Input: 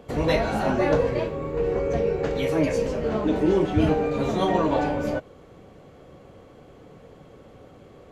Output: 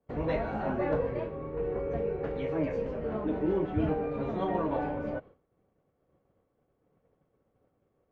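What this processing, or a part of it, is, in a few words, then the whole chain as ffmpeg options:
hearing-loss simulation: -af "lowpass=2k,agate=range=-33dB:threshold=-36dB:ratio=3:detection=peak,volume=-8dB"

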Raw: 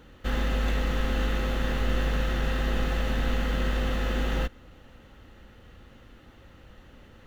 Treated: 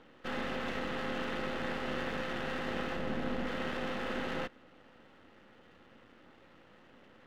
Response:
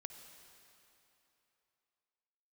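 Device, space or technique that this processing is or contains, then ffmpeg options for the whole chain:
crystal radio: -filter_complex "[0:a]highpass=210,lowpass=3.1k,aeval=exprs='if(lt(val(0),0),0.251*val(0),val(0))':c=same,asettb=1/sr,asplit=3[a][b][c];[a]atrim=end=2.964[d];[b]atrim=start=2.96:end=3.47,asetpts=PTS-STARTPTS,afade=t=in:d=0.004:c=qsin,afade=t=out:st=0.506:d=0.004:c=qsin,tiltshelf=f=680:g=4.5[e];[c]atrim=start=3.466[f];[d][e]acrossfade=d=0.004:c1=hsin:c2=qsin[g];[g][f]acrossfade=d=0.004:c1=qsin:c2=hsin"

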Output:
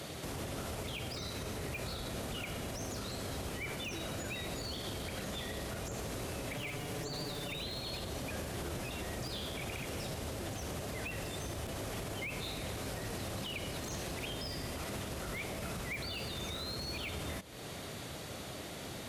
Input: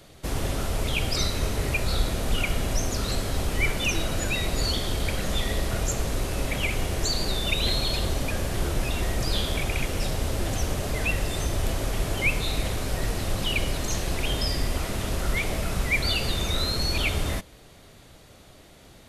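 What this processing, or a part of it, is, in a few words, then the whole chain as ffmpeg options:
podcast mastering chain: -filter_complex "[0:a]asettb=1/sr,asplit=3[a][b][c];[a]atrim=end=6.554[d];[b]atrim=start=6.55:end=7.57,asetpts=PTS-STARTPTS,afade=t=in:d=0.004:c=qsin,afade=t=out:st=1.016:d=0.004:c=qsin,aecho=1:1:6.9:0.87,atrim=end_sample=44982[e];[c]atrim=start=7.566[f];[d][e]acrossfade=d=0.004:c1=hsin:c2=qsin[g];[g][f]acrossfade=d=0.004:c1=qsin:c2=hsin,highpass=92,deesser=0.7,acompressor=threshold=-43dB:ratio=4,alimiter=level_in=14.5dB:limit=-24dB:level=0:latency=1:release=80,volume=-14.5dB,volume=8dB" -ar 44100 -c:a libmp3lame -b:a 128k

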